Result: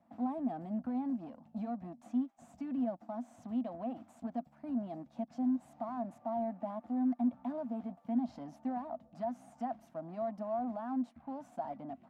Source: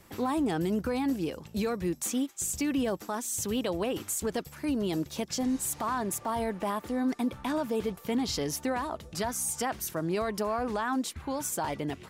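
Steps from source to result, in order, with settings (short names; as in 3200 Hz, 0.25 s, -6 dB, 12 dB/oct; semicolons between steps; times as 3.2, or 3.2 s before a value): added harmonics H 4 -23 dB, 8 -26 dB, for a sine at -21 dBFS; double band-pass 410 Hz, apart 1.5 oct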